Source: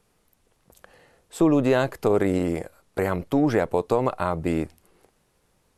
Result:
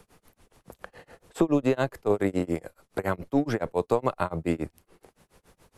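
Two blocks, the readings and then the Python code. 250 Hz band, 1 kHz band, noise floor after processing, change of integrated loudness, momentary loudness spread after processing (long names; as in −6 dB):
−4.0 dB, −3.5 dB, −77 dBFS, −4.0 dB, 22 LU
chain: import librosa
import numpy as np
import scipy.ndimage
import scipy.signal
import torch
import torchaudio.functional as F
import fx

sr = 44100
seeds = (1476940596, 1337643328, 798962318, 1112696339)

y = x * (1.0 - 0.98 / 2.0 + 0.98 / 2.0 * np.cos(2.0 * np.pi * 7.1 * (np.arange(len(x)) / sr)))
y = fx.band_squash(y, sr, depth_pct=40)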